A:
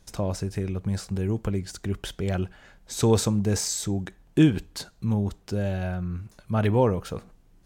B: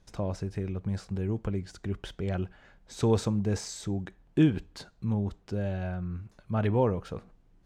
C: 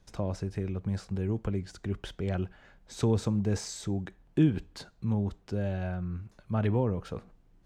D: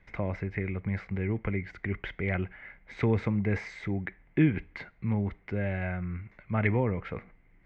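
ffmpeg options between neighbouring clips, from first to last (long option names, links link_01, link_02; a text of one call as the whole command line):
ffmpeg -i in.wav -af "aemphasis=mode=reproduction:type=50fm,volume=-4.5dB" out.wav
ffmpeg -i in.wav -filter_complex "[0:a]acrossover=split=330[link_01][link_02];[link_02]acompressor=threshold=-31dB:ratio=6[link_03];[link_01][link_03]amix=inputs=2:normalize=0" out.wav
ffmpeg -i in.wav -af "lowpass=frequency=2100:width_type=q:width=14" out.wav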